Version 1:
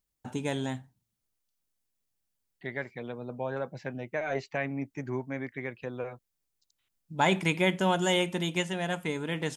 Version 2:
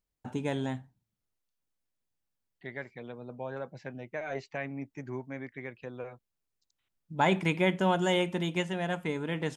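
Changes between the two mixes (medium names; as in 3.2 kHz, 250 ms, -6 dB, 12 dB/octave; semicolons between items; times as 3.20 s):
first voice: add treble shelf 3.8 kHz -9.5 dB; second voice -4.5 dB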